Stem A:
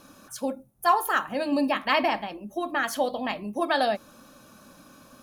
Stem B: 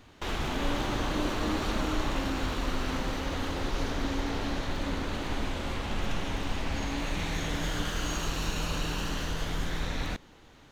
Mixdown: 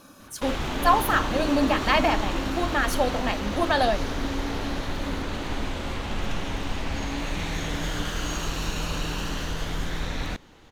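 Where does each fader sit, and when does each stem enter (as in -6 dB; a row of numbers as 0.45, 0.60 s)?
+1.5, +2.5 dB; 0.00, 0.20 s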